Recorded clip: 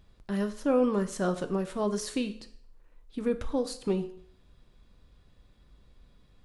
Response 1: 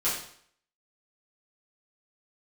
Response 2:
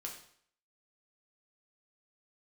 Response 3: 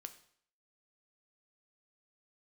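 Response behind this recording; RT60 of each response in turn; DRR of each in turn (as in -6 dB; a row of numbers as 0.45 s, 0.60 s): 3; 0.60 s, 0.60 s, 0.60 s; -10.5 dB, -0.5 dB, 8.0 dB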